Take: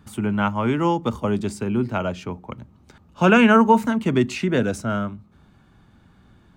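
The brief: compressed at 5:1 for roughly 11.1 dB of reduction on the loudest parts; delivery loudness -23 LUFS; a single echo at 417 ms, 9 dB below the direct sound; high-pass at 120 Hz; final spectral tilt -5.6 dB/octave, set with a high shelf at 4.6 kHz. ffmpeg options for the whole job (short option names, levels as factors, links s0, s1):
-af "highpass=120,highshelf=f=4600:g=-3,acompressor=threshold=0.0708:ratio=5,aecho=1:1:417:0.355,volume=1.78"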